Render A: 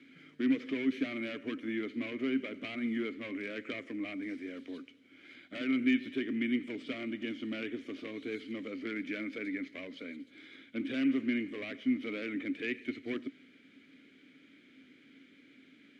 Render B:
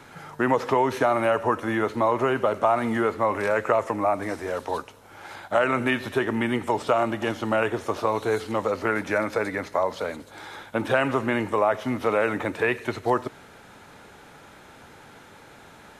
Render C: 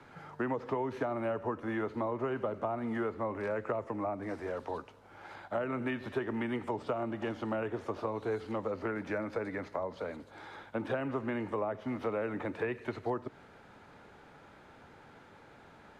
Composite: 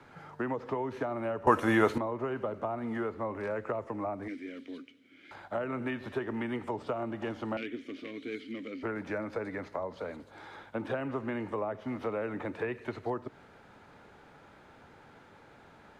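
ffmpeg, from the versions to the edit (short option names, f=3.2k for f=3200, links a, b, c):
-filter_complex "[0:a]asplit=2[a][b];[2:a]asplit=4[c][d][e][f];[c]atrim=end=1.472[g];[1:a]atrim=start=1.468:end=1.982[h];[d]atrim=start=1.978:end=4.282[i];[a]atrim=start=4.278:end=5.312[j];[e]atrim=start=5.308:end=7.572[k];[b]atrim=start=7.568:end=8.832[l];[f]atrim=start=8.828[m];[g][h]acrossfade=d=0.004:c1=hsin:c2=hsin[n];[n][i]acrossfade=d=0.004:c1=hsin:c2=hsin[o];[o][j]acrossfade=d=0.004:c1=hsin:c2=hsin[p];[p][k]acrossfade=d=0.004:c1=hsin:c2=hsin[q];[q][l]acrossfade=d=0.004:c1=hsin:c2=hsin[r];[r][m]acrossfade=d=0.004:c1=hsin:c2=hsin"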